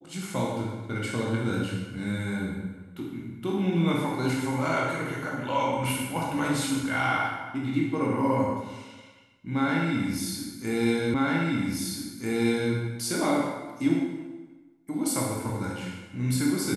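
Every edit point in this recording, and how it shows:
11.14 s: repeat of the last 1.59 s

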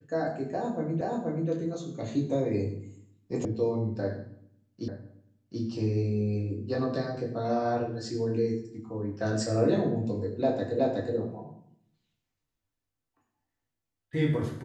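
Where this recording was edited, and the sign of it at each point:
1.01 s: repeat of the last 0.48 s
3.45 s: sound stops dead
4.88 s: repeat of the last 0.73 s
10.79 s: repeat of the last 0.37 s

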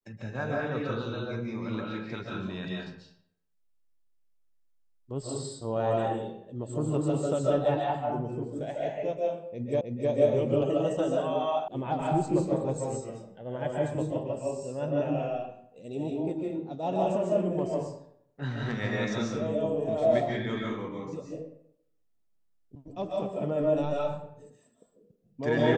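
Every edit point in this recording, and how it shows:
9.81 s: repeat of the last 0.31 s
11.68 s: sound stops dead

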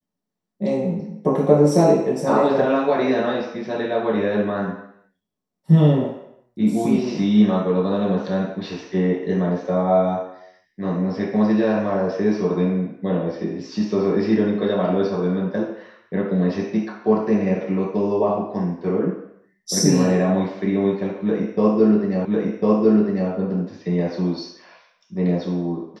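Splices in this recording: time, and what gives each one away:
22.25 s: repeat of the last 1.05 s

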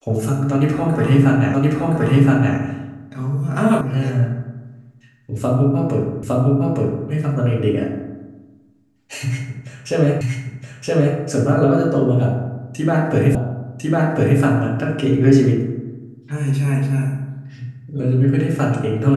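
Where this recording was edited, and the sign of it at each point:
1.54 s: repeat of the last 1.02 s
3.81 s: sound stops dead
6.23 s: repeat of the last 0.86 s
10.21 s: repeat of the last 0.97 s
13.35 s: repeat of the last 1.05 s

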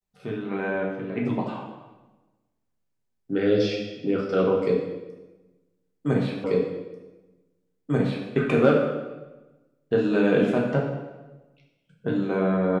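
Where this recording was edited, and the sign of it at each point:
6.44 s: repeat of the last 1.84 s

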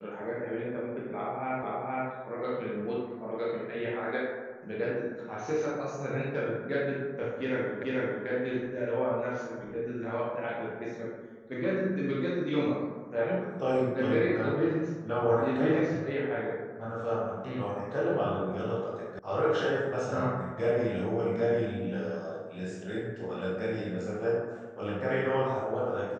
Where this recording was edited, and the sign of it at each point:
1.63 s: repeat of the last 0.47 s
7.83 s: repeat of the last 0.44 s
19.19 s: sound stops dead

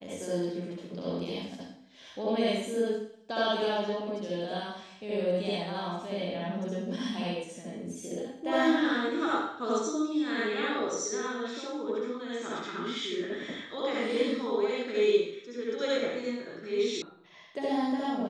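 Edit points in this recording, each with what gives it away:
17.02 s: sound stops dead

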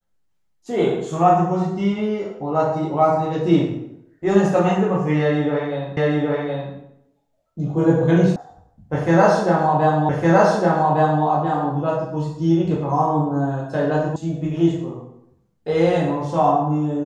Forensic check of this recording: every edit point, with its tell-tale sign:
5.97 s: repeat of the last 0.77 s
8.36 s: sound stops dead
10.09 s: repeat of the last 1.16 s
14.16 s: sound stops dead

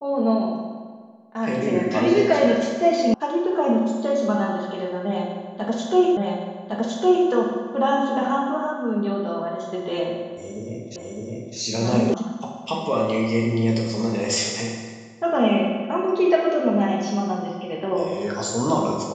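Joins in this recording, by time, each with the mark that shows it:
3.14 s: sound stops dead
6.17 s: repeat of the last 1.11 s
10.96 s: repeat of the last 0.61 s
12.14 s: sound stops dead

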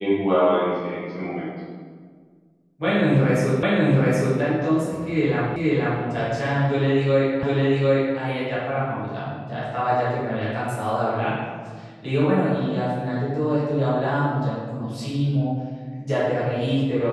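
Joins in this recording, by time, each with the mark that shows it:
3.63 s: repeat of the last 0.77 s
5.56 s: repeat of the last 0.48 s
7.43 s: repeat of the last 0.75 s

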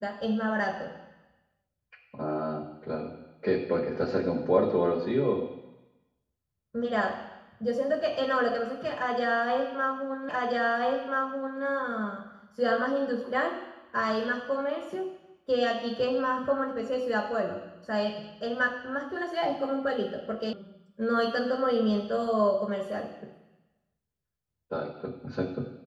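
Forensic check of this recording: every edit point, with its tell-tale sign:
10.29 s: repeat of the last 1.33 s
20.53 s: sound stops dead

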